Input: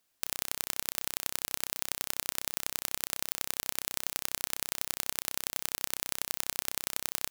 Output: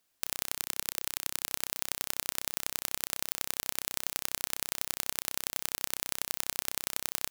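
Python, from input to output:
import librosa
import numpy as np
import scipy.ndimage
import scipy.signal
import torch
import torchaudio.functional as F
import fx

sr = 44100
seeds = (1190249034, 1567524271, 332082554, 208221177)

y = fx.peak_eq(x, sr, hz=450.0, db=-13.0, octaves=0.58, at=(0.55, 1.47))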